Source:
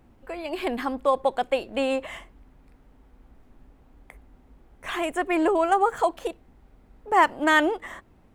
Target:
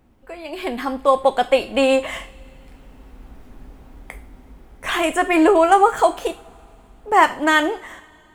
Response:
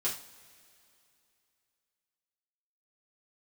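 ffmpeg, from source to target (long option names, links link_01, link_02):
-filter_complex "[0:a]dynaudnorm=framelen=150:gausssize=13:maxgain=12.5dB,asplit=2[link_01][link_02];[1:a]atrim=start_sample=2205,highshelf=frequency=2000:gain=11[link_03];[link_02][link_03]afir=irnorm=-1:irlink=0,volume=-15dB[link_04];[link_01][link_04]amix=inputs=2:normalize=0,volume=-2dB"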